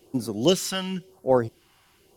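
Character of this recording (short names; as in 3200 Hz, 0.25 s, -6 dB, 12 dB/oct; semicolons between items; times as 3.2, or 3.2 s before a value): phasing stages 2, 0.97 Hz, lowest notch 380–2800 Hz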